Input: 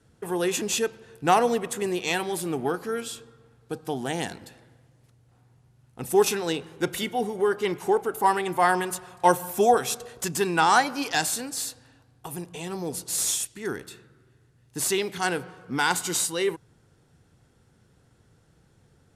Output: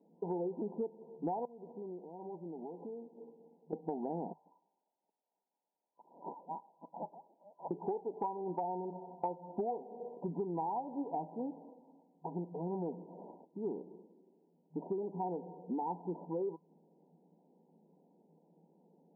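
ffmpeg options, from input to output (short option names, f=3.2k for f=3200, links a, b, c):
-filter_complex "[0:a]asettb=1/sr,asplit=3[a][b][c];[a]atrim=end=1.454[d];[b]atrim=start=1.45:end=3.73,asetpts=PTS-STARTPTS,afade=t=in:d=0.004:c=qsin,afade=t=out:st=2.276:d=0.004:c=qsin,acompressor=threshold=-39dB:ratio=12:attack=3.2:release=140:knee=1:detection=peak[e];[c]atrim=start=3.726[f];[d][e]acrossfade=d=0.004:c1=hsin:c2=qsin[g];[g][f]acrossfade=d=0.004:c1=qsin:c2=hsin,asettb=1/sr,asplit=3[h][i][j];[h]atrim=end=4.334[k];[i]atrim=start=4.33:end=7.71,asetpts=PTS-STARTPTS,afade=t=in:d=0.004:c=qsin,afade=t=out:st=3.376:d=0.004:c=qsin,lowpass=f=3.1k:t=q:w=0.5098,lowpass=f=3.1k:t=q:w=0.6013,lowpass=f=3.1k:t=q:w=0.9,lowpass=f=3.1k:t=q:w=2.563,afreqshift=-3700[l];[j]atrim=start=7.706[m];[k][l]acrossfade=d=0.004:c1=hsin:c2=qsin[n];[n][m]acrossfade=d=0.004:c1=qsin:c2=hsin,afftfilt=real='re*between(b*sr/4096,160,1000)':imag='im*between(b*sr/4096,160,1000)':win_size=4096:overlap=0.75,acompressor=threshold=-32dB:ratio=16,volume=-1.5dB"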